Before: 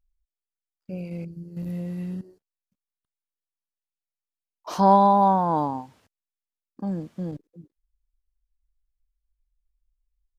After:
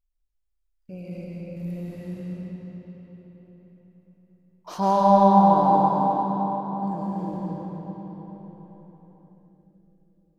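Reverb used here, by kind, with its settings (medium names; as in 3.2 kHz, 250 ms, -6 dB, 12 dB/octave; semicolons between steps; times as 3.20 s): algorithmic reverb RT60 4.9 s, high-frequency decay 0.7×, pre-delay 80 ms, DRR -5 dB; trim -5 dB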